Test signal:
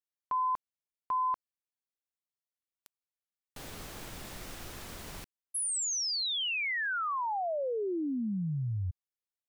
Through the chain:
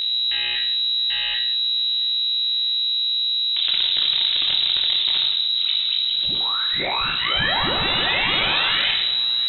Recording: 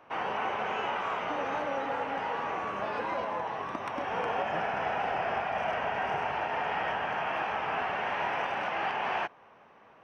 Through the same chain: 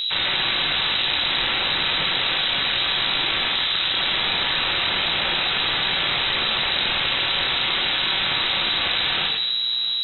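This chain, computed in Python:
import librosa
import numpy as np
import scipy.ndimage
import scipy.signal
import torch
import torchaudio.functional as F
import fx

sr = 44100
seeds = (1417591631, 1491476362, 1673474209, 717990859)

y = scipy.ndimage.median_filter(x, 41, mode='constant')
y = fx.tilt_shelf(y, sr, db=9.0, hz=1200.0)
y = (np.mod(10.0 ** (31.5 / 20.0) * y + 1.0, 2.0) - 1.0) / 10.0 ** (31.5 / 20.0)
y = fx.dmg_buzz(y, sr, base_hz=60.0, harmonics=35, level_db=-50.0, tilt_db=-8, odd_only=False)
y = fx.cheby_harmonics(y, sr, harmonics=(2, 7), levels_db=(-8, -7), full_scale_db=-30.0)
y = fx.echo_feedback(y, sr, ms=663, feedback_pct=51, wet_db=-23.5)
y = fx.room_shoebox(y, sr, seeds[0], volume_m3=340.0, walls='mixed', distance_m=1.2)
y = fx.freq_invert(y, sr, carrier_hz=3900)
y = fx.env_flatten(y, sr, amount_pct=70)
y = y * librosa.db_to_amplitude(7.0)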